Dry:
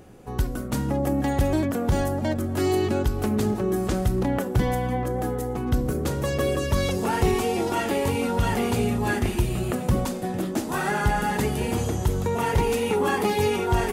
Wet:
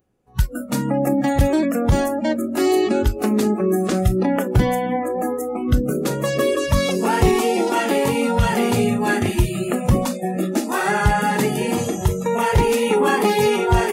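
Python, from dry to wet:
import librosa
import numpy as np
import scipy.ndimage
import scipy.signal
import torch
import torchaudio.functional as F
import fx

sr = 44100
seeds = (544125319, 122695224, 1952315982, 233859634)

y = fx.noise_reduce_blind(x, sr, reduce_db=27)
y = y * 10.0 ** (6.0 / 20.0)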